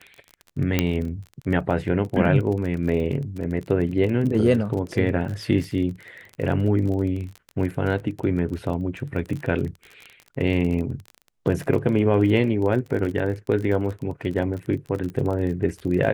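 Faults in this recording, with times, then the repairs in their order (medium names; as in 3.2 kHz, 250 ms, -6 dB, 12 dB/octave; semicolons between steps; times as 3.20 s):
crackle 31 per s -29 dBFS
0.79 s: pop -5 dBFS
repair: de-click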